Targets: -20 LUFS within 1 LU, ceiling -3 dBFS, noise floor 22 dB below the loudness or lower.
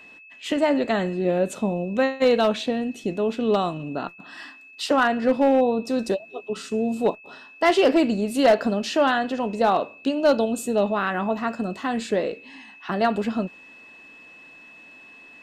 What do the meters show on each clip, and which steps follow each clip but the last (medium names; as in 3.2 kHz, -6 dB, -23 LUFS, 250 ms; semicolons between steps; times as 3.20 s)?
clipped samples 0.3%; clipping level -11.0 dBFS; steady tone 2.6 kHz; tone level -45 dBFS; loudness -23.0 LUFS; peak level -11.0 dBFS; loudness target -20.0 LUFS
-> clip repair -11 dBFS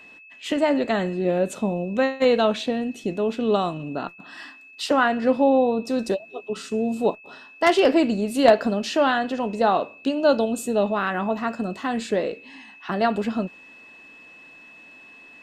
clipped samples 0.0%; steady tone 2.6 kHz; tone level -45 dBFS
-> band-stop 2.6 kHz, Q 30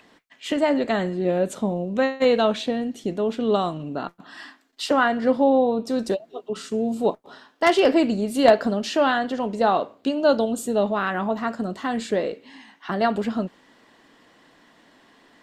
steady tone not found; loudness -23.0 LUFS; peak level -2.0 dBFS; loudness target -20.0 LUFS
-> trim +3 dB; peak limiter -3 dBFS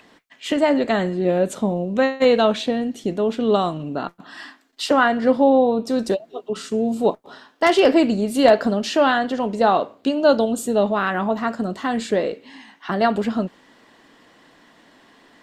loudness -20.0 LUFS; peak level -3.0 dBFS; noise floor -56 dBFS